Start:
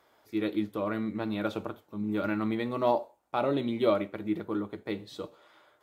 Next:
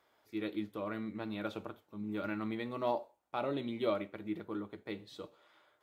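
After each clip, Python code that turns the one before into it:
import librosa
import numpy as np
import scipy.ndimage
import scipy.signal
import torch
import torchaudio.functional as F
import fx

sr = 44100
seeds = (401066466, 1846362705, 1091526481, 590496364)

y = fx.peak_eq(x, sr, hz=2600.0, db=3.0, octaves=1.7)
y = y * librosa.db_to_amplitude(-8.0)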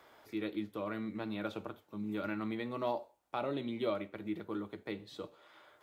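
y = fx.band_squash(x, sr, depth_pct=40)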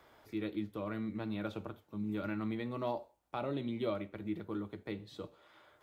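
y = fx.low_shelf(x, sr, hz=150.0, db=12.0)
y = y * librosa.db_to_amplitude(-2.5)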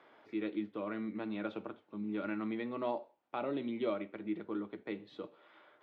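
y = scipy.signal.sosfilt(scipy.signal.cheby1(2, 1.0, [250.0, 2800.0], 'bandpass', fs=sr, output='sos'), x)
y = y * librosa.db_to_amplitude(1.5)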